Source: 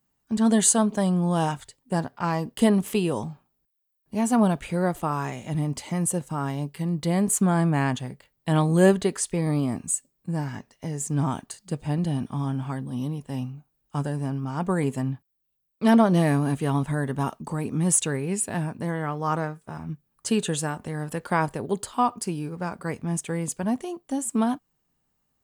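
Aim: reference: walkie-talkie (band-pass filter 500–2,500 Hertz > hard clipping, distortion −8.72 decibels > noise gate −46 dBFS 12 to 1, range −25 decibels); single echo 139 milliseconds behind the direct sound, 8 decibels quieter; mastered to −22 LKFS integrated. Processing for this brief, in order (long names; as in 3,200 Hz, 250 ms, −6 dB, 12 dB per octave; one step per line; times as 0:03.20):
band-pass filter 500–2,500 Hz
single-tap delay 139 ms −8 dB
hard clipping −24 dBFS
noise gate −46 dBFS 12 to 1, range −25 dB
level +12 dB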